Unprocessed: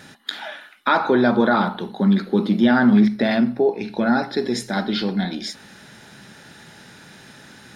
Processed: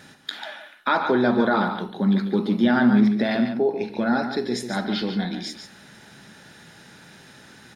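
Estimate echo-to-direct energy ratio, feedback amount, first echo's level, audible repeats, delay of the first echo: -8.5 dB, no regular repeats, -8.5 dB, 1, 143 ms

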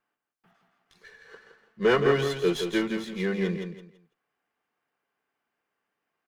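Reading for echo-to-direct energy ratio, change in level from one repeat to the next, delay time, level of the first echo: -6.5 dB, -12.0 dB, 167 ms, -7.0 dB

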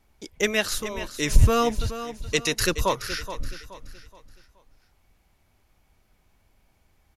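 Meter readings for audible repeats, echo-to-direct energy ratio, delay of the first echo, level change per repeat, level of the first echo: 3, -11.5 dB, 424 ms, -8.5 dB, -12.0 dB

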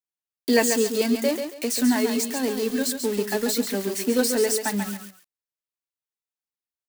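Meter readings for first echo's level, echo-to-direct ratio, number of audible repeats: -7.0 dB, -6.5 dB, 2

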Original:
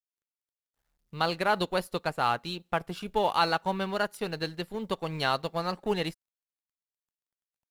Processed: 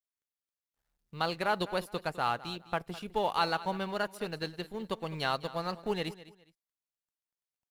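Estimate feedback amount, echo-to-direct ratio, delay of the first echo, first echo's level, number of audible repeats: 26%, -16.5 dB, 206 ms, -17.0 dB, 2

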